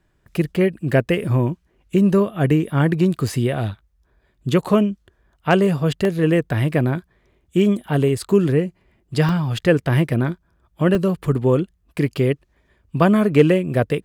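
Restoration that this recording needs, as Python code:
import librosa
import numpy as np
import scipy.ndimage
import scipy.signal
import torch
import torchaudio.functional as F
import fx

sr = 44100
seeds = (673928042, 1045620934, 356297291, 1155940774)

y = fx.fix_declip(x, sr, threshold_db=-3.5)
y = fx.fix_interpolate(y, sr, at_s=(6.05, 9.29, 10.95), length_ms=1.3)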